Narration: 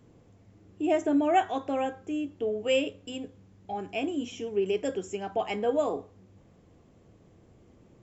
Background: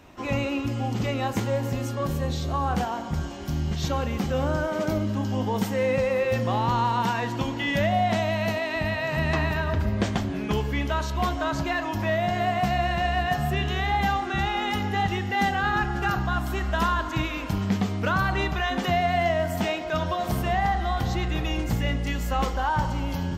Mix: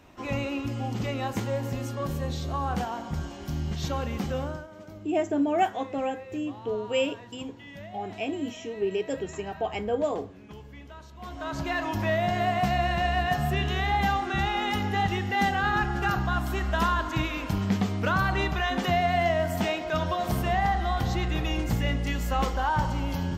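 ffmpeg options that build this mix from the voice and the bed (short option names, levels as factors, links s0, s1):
-filter_complex "[0:a]adelay=4250,volume=0.944[s0];[1:a]volume=5.62,afade=t=out:st=4.31:d=0.36:silence=0.158489,afade=t=in:st=11.2:d=0.63:silence=0.11885[s1];[s0][s1]amix=inputs=2:normalize=0"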